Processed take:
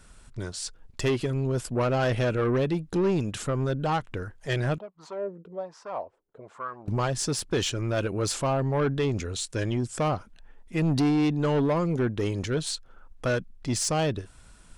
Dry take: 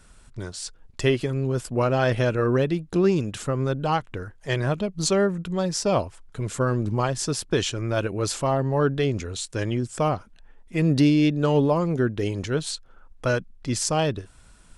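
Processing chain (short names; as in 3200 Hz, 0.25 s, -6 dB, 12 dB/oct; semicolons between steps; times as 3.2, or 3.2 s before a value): soft clip -19 dBFS, distortion -13 dB; 4.78–6.88 wah 1.2 Hz 420–1100 Hz, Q 3.2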